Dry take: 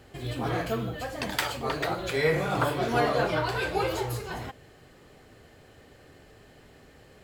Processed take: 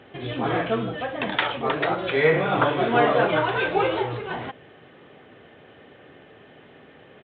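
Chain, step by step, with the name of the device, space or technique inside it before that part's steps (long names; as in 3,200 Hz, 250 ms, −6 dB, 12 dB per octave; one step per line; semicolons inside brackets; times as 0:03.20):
Bluetooth headset (high-pass filter 160 Hz 12 dB per octave; downsampling to 8,000 Hz; level +6 dB; SBC 64 kbit/s 16,000 Hz)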